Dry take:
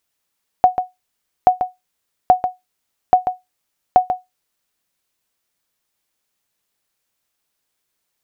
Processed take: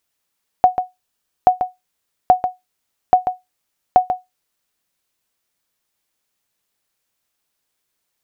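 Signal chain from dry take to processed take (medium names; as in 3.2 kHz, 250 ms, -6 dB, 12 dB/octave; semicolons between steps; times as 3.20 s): 0.81–1.58 s: band-stop 2.1 kHz, Q 10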